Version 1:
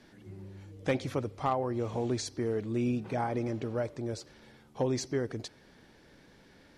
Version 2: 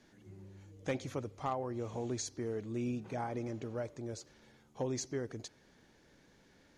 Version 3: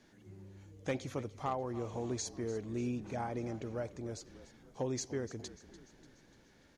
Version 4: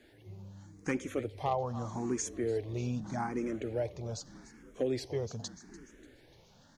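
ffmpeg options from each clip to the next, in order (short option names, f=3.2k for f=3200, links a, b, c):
-af "equalizer=f=6.6k:w=6:g=10,volume=-6.5dB"
-filter_complex "[0:a]asplit=6[a][b][c][d][e][f];[b]adelay=294,afreqshift=-36,volume=-16dB[g];[c]adelay=588,afreqshift=-72,volume=-21.4dB[h];[d]adelay=882,afreqshift=-108,volume=-26.7dB[i];[e]adelay=1176,afreqshift=-144,volume=-32.1dB[j];[f]adelay=1470,afreqshift=-180,volume=-37.4dB[k];[a][g][h][i][j][k]amix=inputs=6:normalize=0"
-filter_complex "[0:a]asplit=2[a][b];[b]afreqshift=0.82[c];[a][c]amix=inputs=2:normalize=1,volume=6.5dB"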